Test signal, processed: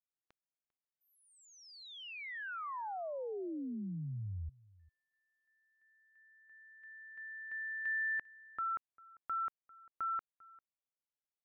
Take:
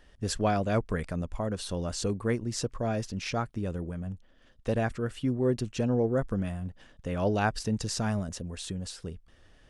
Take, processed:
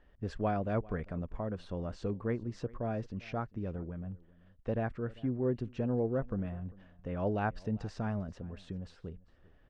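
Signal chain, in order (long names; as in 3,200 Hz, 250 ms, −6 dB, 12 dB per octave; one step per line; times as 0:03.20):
Bessel low-pass filter 1,700 Hz, order 2
single-tap delay 397 ms −22.5 dB
level −5 dB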